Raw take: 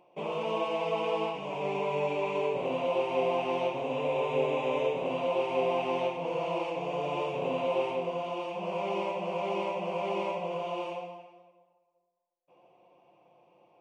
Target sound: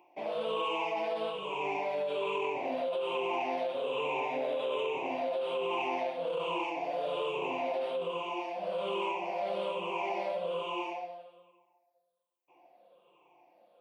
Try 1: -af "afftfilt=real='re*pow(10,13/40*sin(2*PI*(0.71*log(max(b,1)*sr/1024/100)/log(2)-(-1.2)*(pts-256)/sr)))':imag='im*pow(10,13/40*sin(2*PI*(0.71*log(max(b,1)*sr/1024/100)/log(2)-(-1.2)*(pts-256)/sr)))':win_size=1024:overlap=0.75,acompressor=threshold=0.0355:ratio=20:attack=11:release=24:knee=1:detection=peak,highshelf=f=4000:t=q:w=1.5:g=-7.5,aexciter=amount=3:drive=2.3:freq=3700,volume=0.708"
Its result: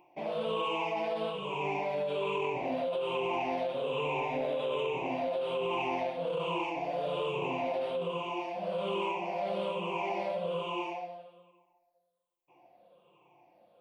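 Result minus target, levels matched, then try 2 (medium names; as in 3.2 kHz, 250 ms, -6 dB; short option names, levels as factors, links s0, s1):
250 Hz band +2.5 dB
-af "afftfilt=real='re*pow(10,13/40*sin(2*PI*(0.71*log(max(b,1)*sr/1024/100)/log(2)-(-1.2)*(pts-256)/sr)))':imag='im*pow(10,13/40*sin(2*PI*(0.71*log(max(b,1)*sr/1024/100)/log(2)-(-1.2)*(pts-256)/sr)))':win_size=1024:overlap=0.75,acompressor=threshold=0.0355:ratio=20:attack=11:release=24:knee=1:detection=peak,highpass=280,highshelf=f=4000:t=q:w=1.5:g=-7.5,aexciter=amount=3:drive=2.3:freq=3700,volume=0.708"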